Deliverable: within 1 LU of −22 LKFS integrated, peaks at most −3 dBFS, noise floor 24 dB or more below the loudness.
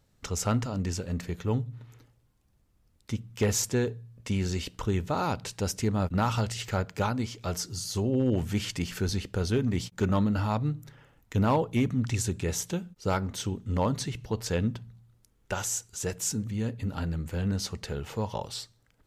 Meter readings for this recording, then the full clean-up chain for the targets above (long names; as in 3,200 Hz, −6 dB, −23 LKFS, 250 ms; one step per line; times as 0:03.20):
share of clipped samples 0.3%; peaks flattened at −18.0 dBFS; integrated loudness −30.0 LKFS; sample peak −18.0 dBFS; target loudness −22.0 LKFS
→ clipped peaks rebuilt −18 dBFS
level +8 dB